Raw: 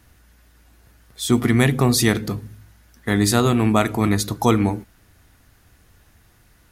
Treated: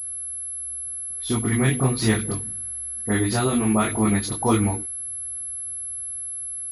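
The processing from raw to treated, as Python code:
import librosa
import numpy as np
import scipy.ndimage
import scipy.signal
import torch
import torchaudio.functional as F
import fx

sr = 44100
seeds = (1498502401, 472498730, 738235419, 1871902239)

y = fx.rider(x, sr, range_db=10, speed_s=0.5)
y = fx.chorus_voices(y, sr, voices=2, hz=1.4, base_ms=21, depth_ms=3.0, mix_pct=45)
y = fx.dispersion(y, sr, late='highs', ms=49.0, hz=1900.0)
y = fx.pwm(y, sr, carrier_hz=11000.0)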